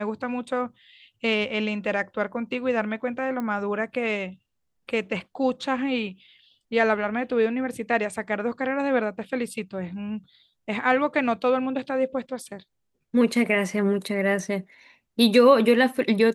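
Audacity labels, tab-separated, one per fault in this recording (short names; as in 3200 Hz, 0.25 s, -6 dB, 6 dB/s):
3.400000	3.400000	pop -19 dBFS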